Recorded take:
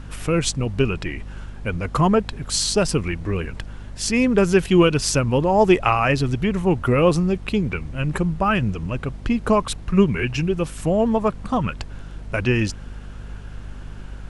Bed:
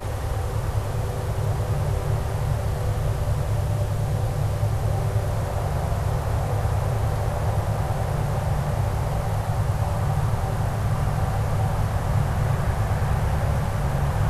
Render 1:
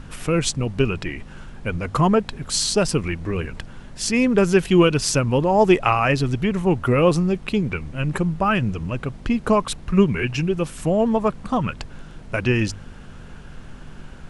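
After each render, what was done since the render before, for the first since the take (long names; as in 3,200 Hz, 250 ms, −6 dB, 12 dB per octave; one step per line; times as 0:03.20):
hum removal 50 Hz, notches 2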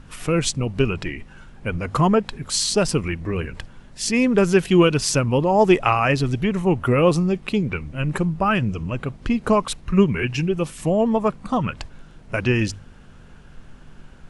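noise reduction from a noise print 6 dB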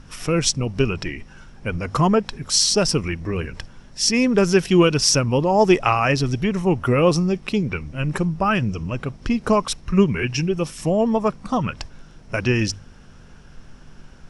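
parametric band 5,500 Hz +12.5 dB 0.25 octaves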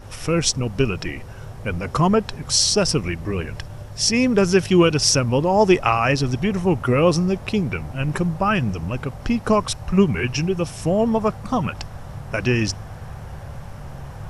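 mix in bed −12.5 dB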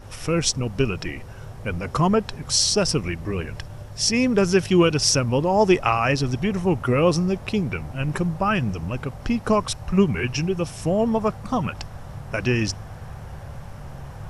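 level −2 dB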